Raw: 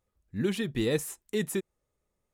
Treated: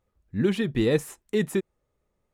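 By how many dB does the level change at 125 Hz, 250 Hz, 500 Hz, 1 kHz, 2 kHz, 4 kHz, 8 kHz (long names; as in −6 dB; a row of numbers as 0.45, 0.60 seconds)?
+5.5, +5.5, +5.5, +5.0, +3.5, +1.0, −3.0 decibels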